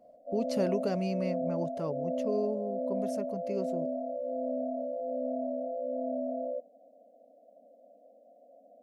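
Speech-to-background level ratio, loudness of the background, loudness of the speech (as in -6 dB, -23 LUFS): -0.5 dB, -35.0 LUFS, -35.5 LUFS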